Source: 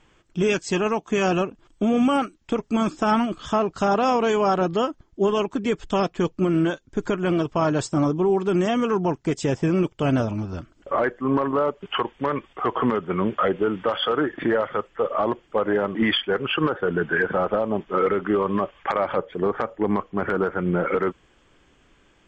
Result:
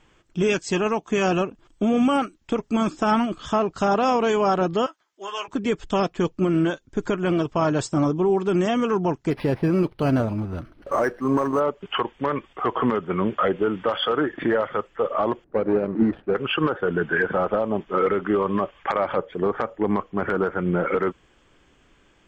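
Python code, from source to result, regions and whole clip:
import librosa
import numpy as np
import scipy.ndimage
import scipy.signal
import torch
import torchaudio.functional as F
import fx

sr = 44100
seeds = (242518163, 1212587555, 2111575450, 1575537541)

y = fx.chain(x, sr, fx.highpass(hz=1100.0, slope=12),
    fx.doubler(ms=16.0, db=-8.0), at=(4.86, 5.48))
y = fx.chain(y, sr, fx.law_mismatch(coded='mu'),
    fx.lowpass(hz=5300.0, slope=12),
    fx.resample_linear(factor=6), at=(9.3, 11.6))
y = fx.chain(y, sr, fx.median_filter(points=41),
    fx.lowpass(hz=1600.0, slope=12),
    fx.peak_eq(hz=280.0, db=3.0, octaves=3.0), at=(15.44, 16.35))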